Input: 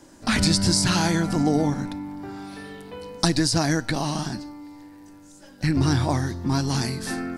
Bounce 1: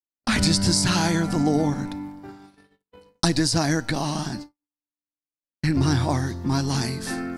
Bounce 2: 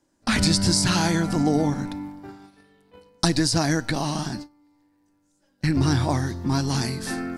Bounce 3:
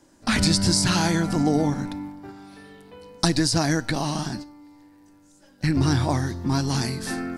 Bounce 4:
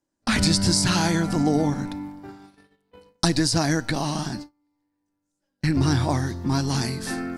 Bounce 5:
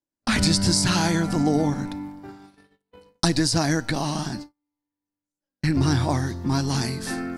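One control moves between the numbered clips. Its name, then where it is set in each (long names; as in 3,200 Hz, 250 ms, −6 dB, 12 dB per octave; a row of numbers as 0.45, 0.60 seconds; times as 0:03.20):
noise gate, range: −59, −19, −7, −31, −43 decibels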